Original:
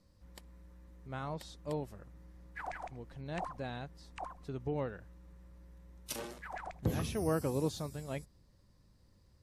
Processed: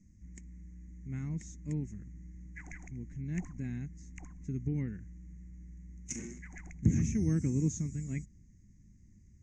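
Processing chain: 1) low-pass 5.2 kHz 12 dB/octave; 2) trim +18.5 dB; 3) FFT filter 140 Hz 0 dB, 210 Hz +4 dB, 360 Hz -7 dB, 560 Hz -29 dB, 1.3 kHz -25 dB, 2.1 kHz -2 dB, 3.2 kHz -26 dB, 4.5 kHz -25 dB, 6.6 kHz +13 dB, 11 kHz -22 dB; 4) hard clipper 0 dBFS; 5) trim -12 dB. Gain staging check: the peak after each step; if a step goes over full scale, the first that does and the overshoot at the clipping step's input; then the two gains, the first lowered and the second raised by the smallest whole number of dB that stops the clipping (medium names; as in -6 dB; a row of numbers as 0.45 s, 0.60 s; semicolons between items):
-19.0 dBFS, -0.5 dBFS, -2.0 dBFS, -2.0 dBFS, -14.0 dBFS; nothing clips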